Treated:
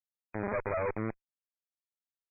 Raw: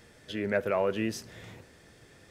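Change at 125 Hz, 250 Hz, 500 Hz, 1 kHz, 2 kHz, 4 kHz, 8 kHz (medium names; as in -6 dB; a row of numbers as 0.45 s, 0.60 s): -0.5 dB, -6.0 dB, -5.0 dB, -1.0 dB, -5.0 dB, under -40 dB, under -35 dB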